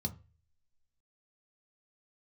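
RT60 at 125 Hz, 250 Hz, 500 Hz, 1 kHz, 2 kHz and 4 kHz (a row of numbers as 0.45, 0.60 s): 0.55, 0.30, 0.35, 0.30, 0.40, 0.30 s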